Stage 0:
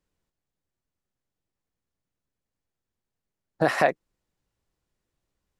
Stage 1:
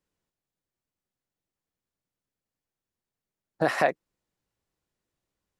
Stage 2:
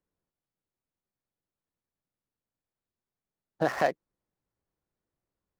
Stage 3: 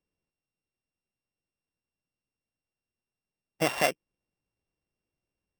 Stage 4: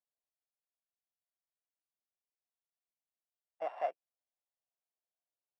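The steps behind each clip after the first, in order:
bass shelf 65 Hz -10 dB; trim -2 dB
median filter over 15 samples; trim -2 dB
sorted samples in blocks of 16 samples
ladder band-pass 780 Hz, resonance 60%; trim -2.5 dB

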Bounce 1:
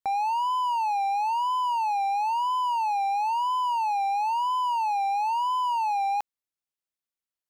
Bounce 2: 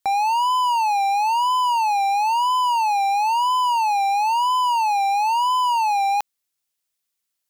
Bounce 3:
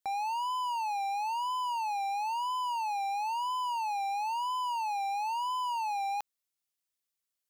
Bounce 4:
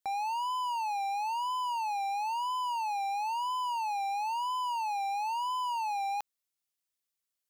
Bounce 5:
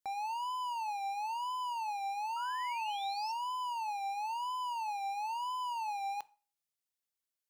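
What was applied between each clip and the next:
treble shelf 2.4 kHz +9.5 dB; trim +5 dB
peak limiter -18.5 dBFS, peak gain reduction 5 dB; trim -8.5 dB
no audible change
painted sound rise, 2.36–3.32 s, 1.3–5.6 kHz -42 dBFS; reverberation RT60 0.40 s, pre-delay 4 ms, DRR 17.5 dB; trim -4.5 dB

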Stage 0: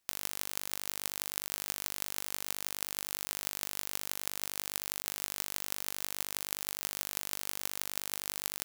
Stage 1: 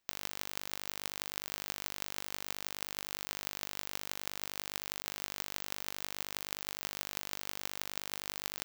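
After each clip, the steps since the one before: peaking EQ 11 kHz -11.5 dB 1 oct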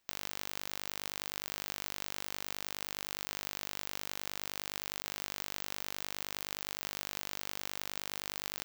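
saturation -16.5 dBFS, distortion -12 dB; trim +4 dB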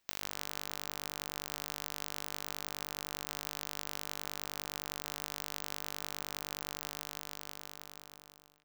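fade out at the end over 2.00 s; two-band feedback delay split 1.5 kHz, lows 134 ms, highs 181 ms, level -15 dB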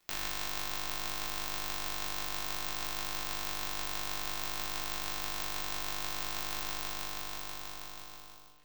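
crackle 36 per s -52 dBFS; simulated room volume 430 m³, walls furnished, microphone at 3.3 m

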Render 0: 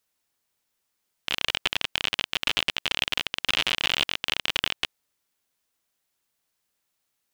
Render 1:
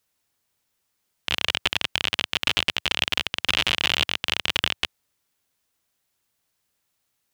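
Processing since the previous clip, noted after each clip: peaking EQ 95 Hz +5.5 dB 1.5 oct; trim +2.5 dB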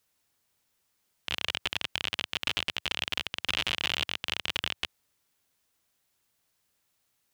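peak limiter -12 dBFS, peak gain reduction 10.5 dB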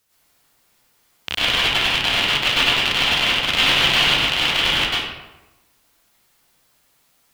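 reverberation RT60 1.0 s, pre-delay 90 ms, DRR -9.5 dB; trim +6 dB

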